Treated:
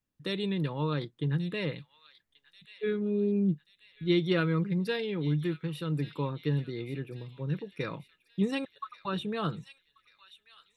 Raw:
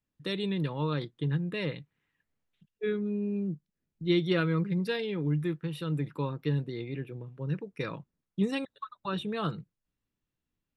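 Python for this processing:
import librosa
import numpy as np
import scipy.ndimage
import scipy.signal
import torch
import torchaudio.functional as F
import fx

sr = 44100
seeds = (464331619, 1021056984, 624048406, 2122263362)

y = fx.peak_eq(x, sr, hz=fx.line((3.0, 700.0), (3.52, 210.0)), db=9.0, octaves=0.94, at=(3.0, 3.52), fade=0.02)
y = fx.echo_wet_highpass(y, sr, ms=1135, feedback_pct=47, hz=2500.0, wet_db=-12.0)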